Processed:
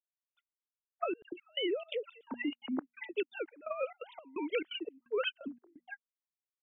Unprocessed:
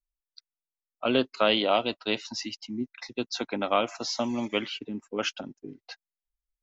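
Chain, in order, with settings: formants replaced by sine waves; hum notches 60/120/180/240 Hz; compressor with a negative ratio -27 dBFS, ratio -0.5; 1.22–2.21 s: phase dispersion lows, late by 105 ms, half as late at 1.8 kHz; trance gate "..xxx.xx" 172 bpm -24 dB; trim -4 dB

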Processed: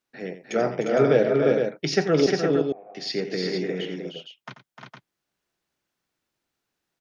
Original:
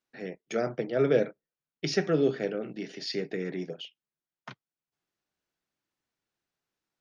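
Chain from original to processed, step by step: dynamic bell 890 Hz, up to +5 dB, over -43 dBFS, Q 1.6; 2.26–2.95 s: cascade formant filter a; multi-tap echo 87/303/353/460 ms -12/-7.5/-4.5/-6.5 dB; trim +4 dB

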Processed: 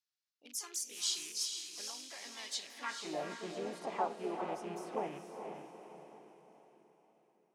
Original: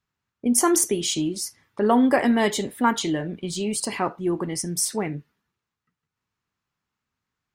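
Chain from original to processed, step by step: rattle on loud lows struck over -32 dBFS, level -25 dBFS; compression 16:1, threshold -23 dBFS, peak gain reduction 10 dB; band-pass sweep 4.7 kHz -> 680 Hz, 2.66–3.16 s; on a send: echo that smears into a reverb 455 ms, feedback 46%, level -6 dB; on the sum: harmony voices +3 st -4 dB; trim -2.5 dB

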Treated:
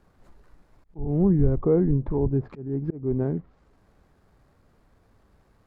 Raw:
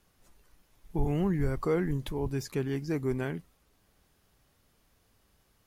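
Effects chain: median filter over 15 samples; low-pass that closes with the level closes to 560 Hz, closed at -28.5 dBFS; slow attack 302 ms; trim +9 dB

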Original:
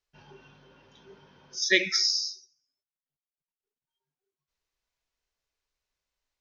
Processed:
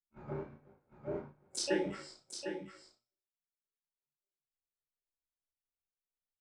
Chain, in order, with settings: local Wiener filter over 15 samples; low-pass that closes with the level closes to 1 kHz, closed at -27.5 dBFS; gate -54 dBFS, range -31 dB; tilt shelf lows +6 dB, about 1.4 kHz; compression 8:1, threshold -38 dBFS, peak gain reduction 19 dB; harmony voices -3 st -8 dB, +7 st -4 dB; feedback comb 120 Hz, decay 0.55 s, harmonics all, mix 40%; chorus 1.5 Hz, delay 20 ms, depth 6.3 ms; doubling 35 ms -5 dB; on a send: delay 753 ms -8 dB; on the sum: trim +13 dB

